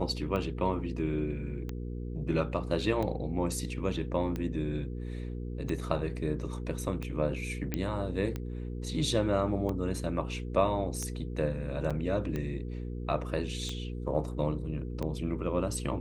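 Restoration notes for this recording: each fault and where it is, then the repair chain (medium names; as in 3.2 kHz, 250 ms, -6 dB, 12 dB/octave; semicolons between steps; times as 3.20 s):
hum 60 Hz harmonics 8 -37 dBFS
tick 45 rpm -22 dBFS
7.74 s: pop -16 dBFS
11.90–11.91 s: dropout 5.9 ms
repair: de-click; de-hum 60 Hz, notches 8; interpolate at 11.90 s, 5.9 ms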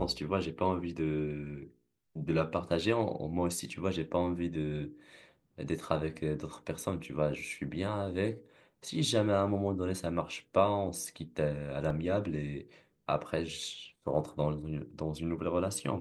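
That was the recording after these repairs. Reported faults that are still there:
nothing left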